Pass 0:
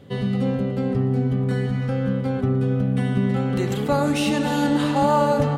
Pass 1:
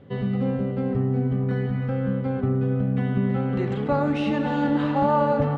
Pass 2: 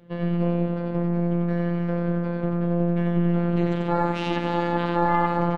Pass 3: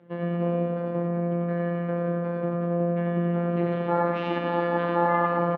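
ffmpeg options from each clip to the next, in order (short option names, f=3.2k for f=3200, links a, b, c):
-af "lowpass=2.3k,volume=-2dB"
-af "aecho=1:1:90.38|268.2:0.708|0.316,afftfilt=real='hypot(re,im)*cos(PI*b)':imag='0':win_size=1024:overlap=0.75,aeval=exprs='0.422*(cos(1*acos(clip(val(0)/0.422,-1,1)))-cos(1*PI/2))+0.211*(cos(2*acos(clip(val(0)/0.422,-1,1)))-cos(2*PI/2))+0.0668*(cos(4*acos(clip(val(0)/0.422,-1,1)))-cos(4*PI/2))+0.0596*(cos(6*acos(clip(val(0)/0.422,-1,1)))-cos(6*PI/2))':c=same"
-filter_complex "[0:a]highpass=190,lowpass=2.2k,asplit=2[a][b];[b]aecho=0:1:112:0.473[c];[a][c]amix=inputs=2:normalize=0"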